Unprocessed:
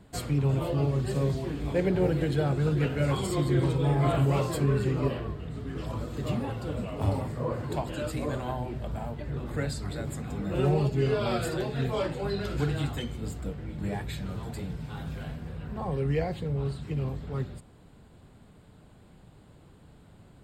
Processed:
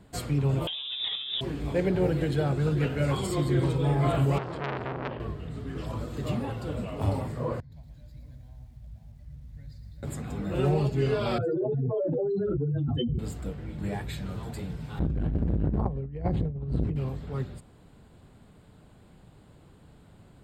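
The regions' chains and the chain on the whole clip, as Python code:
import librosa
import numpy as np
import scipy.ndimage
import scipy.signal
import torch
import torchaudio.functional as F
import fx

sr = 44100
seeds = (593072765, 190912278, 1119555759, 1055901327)

y = fx.chain(x, sr, fx.low_shelf(hz=110.0, db=-9.0),
    fx.over_compress(threshold_db=-34.0, ratio=-1.0),
    fx.freq_invert(carrier_hz=3700), at=(0.67, 1.41))
y = fx.chain(y, sr, fx.lowpass(hz=2900.0, slope=12),
    fx.transformer_sat(knee_hz=1600.0), at=(4.38, 5.2))
y = fx.chain(y, sr, fx.tone_stack(knobs='10-0-1'),
    fx.fixed_phaser(hz=1900.0, stages=8),
    fx.echo_crushed(ms=114, feedback_pct=55, bits=11, wet_db=-8), at=(7.6, 10.03))
y = fx.chain(y, sr, fx.spec_expand(power=3.0),
    fx.highpass(hz=290.0, slope=12),
    fx.env_flatten(amount_pct=100), at=(11.38, 13.19))
y = fx.chain(y, sr, fx.tilt_eq(slope=-4.0),
    fx.over_compress(threshold_db=-24.0, ratio=-0.5),
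    fx.transformer_sat(knee_hz=250.0), at=(14.99, 16.96))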